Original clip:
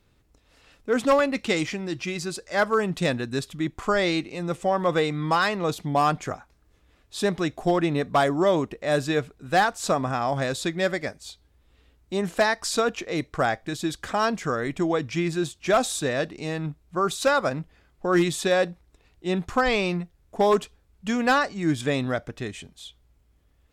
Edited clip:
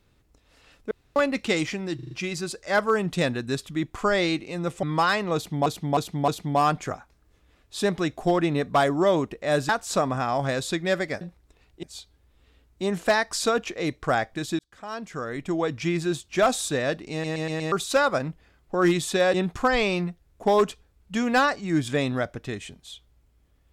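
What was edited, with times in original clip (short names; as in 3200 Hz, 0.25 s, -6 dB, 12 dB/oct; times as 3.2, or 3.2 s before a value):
0.91–1.16 room tone
1.95 stutter 0.04 s, 5 plays
4.67–5.16 cut
5.68–5.99 loop, 4 plays
9.09–9.62 cut
13.9–15.13 fade in
16.43 stutter in place 0.12 s, 5 plays
18.65–19.27 move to 11.14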